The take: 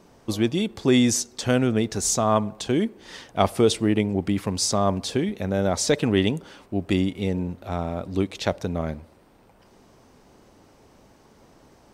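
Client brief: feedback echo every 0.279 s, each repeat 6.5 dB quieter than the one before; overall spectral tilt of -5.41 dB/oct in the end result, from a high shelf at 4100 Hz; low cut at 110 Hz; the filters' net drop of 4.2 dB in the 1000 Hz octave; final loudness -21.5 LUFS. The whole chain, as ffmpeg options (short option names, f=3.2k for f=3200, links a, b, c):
-af "highpass=110,equalizer=f=1k:t=o:g=-5.5,highshelf=f=4.1k:g=-8,aecho=1:1:279|558|837|1116|1395|1674:0.473|0.222|0.105|0.0491|0.0231|0.0109,volume=3dB"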